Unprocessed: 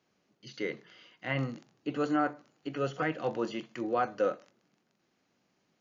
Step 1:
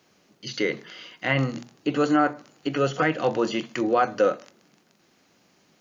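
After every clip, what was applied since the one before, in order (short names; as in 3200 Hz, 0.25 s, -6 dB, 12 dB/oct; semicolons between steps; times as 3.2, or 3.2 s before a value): high shelf 4300 Hz +5.5 dB; notches 60/120/180/240 Hz; in parallel at +1 dB: compressor, threshold -36 dBFS, peak gain reduction 12.5 dB; on the sum: gain +5.5 dB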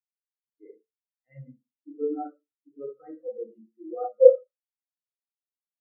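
Schroeder reverb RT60 0.79 s, combs from 28 ms, DRR -1.5 dB; spectral expander 4:1; gain +3.5 dB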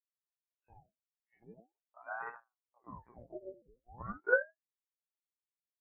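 dispersion lows, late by 0.104 s, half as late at 710 Hz; monotone LPC vocoder at 8 kHz 120 Hz; ring modulator with a swept carrier 640 Hz, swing 85%, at 0.43 Hz; gain -8.5 dB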